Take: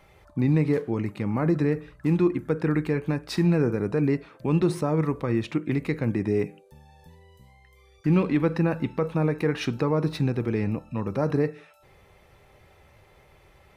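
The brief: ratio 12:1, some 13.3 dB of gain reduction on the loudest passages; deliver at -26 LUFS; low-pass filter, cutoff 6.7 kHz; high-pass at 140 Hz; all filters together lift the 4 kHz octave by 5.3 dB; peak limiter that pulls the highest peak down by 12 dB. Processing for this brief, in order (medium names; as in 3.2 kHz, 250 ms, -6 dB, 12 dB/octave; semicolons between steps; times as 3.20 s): high-pass 140 Hz; low-pass 6.7 kHz; peaking EQ 4 kHz +7 dB; compression 12:1, threshold -31 dBFS; trim +13.5 dB; peak limiter -15.5 dBFS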